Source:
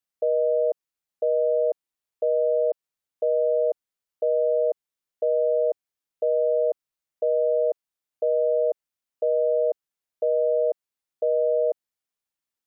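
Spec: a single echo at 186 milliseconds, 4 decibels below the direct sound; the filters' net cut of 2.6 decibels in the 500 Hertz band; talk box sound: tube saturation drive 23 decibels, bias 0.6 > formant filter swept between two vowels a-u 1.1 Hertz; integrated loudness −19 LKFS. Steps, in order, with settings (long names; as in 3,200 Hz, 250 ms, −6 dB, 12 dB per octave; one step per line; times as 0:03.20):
parametric band 500 Hz −3 dB
single-tap delay 186 ms −4 dB
tube saturation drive 23 dB, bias 0.6
formant filter swept between two vowels a-u 1.1 Hz
level +20 dB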